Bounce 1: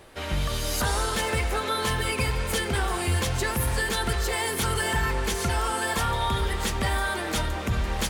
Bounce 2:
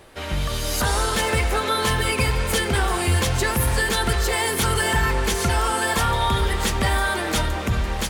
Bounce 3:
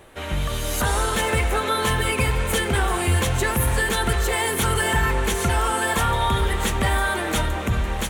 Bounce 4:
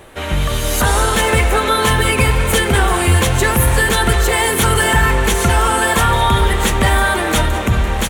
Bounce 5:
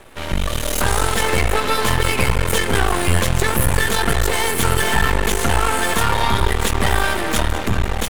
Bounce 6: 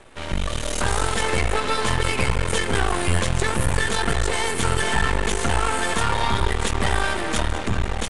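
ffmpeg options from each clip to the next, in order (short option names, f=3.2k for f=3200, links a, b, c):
-af "dynaudnorm=f=320:g=5:m=3dB,volume=2dB"
-af "equalizer=f=4.9k:w=3.2:g=-9.5"
-af "aecho=1:1:201:0.178,volume=7.5dB"
-af "aeval=exprs='max(val(0),0)':c=same"
-af "aresample=22050,aresample=44100,volume=-4dB"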